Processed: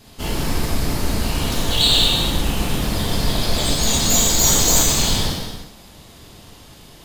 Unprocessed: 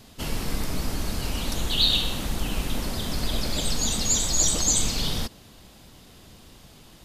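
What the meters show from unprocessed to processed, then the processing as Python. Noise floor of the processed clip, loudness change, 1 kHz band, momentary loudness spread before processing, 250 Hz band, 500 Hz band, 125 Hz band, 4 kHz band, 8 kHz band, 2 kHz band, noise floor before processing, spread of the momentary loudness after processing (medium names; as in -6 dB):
-44 dBFS, +7.5 dB, +10.0 dB, 10 LU, +8.0 dB, +9.5 dB, +8.5 dB, +7.5 dB, +6.5 dB, +8.5 dB, -50 dBFS, 11 LU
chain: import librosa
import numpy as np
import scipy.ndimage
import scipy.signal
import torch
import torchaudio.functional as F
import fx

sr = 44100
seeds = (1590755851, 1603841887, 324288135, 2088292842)

p1 = fx.tracing_dist(x, sr, depth_ms=0.037)
p2 = fx.schmitt(p1, sr, flips_db=-30.0)
p3 = p1 + (p2 * 10.0 ** (-9.0 / 20.0))
y = fx.rev_gated(p3, sr, seeds[0], gate_ms=470, shape='falling', drr_db=-6.0)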